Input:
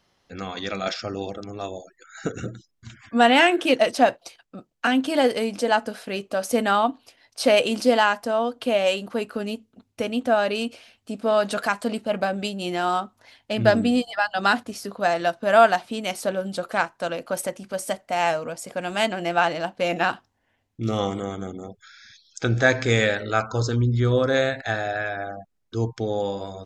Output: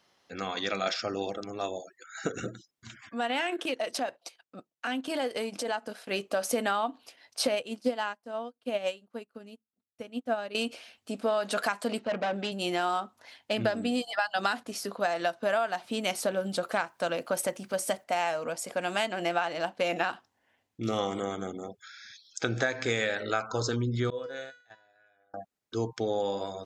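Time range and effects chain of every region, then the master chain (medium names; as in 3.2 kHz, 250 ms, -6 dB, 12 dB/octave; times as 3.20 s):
3.00–6.11 s: compression 3:1, threshold -27 dBFS + transient shaper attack -5 dB, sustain -10 dB
7.47–10.55 s: bass shelf 190 Hz +11.5 dB + upward expansion 2.5:1, over -35 dBFS
11.99–12.52 s: band-pass 110–7500 Hz + hard clipper -23.5 dBFS + distance through air 100 m
13.93–14.59 s: treble shelf 4.6 kHz +4 dB + tape noise reduction on one side only decoder only
15.67–18.04 s: bass shelf 130 Hz +9 dB + word length cut 12-bit, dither none
24.10–25.34 s: gate -23 dBFS, range -20 dB + feedback comb 490 Hz, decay 0.46 s, mix 90%
whole clip: high-pass 310 Hz 6 dB/octave; compression 12:1, threshold -24 dBFS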